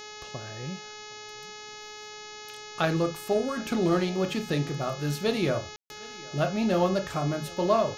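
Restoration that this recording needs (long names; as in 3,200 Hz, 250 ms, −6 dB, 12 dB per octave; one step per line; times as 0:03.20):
hum removal 423.1 Hz, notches 16
ambience match 0:05.76–0:05.90
echo removal 763 ms −23 dB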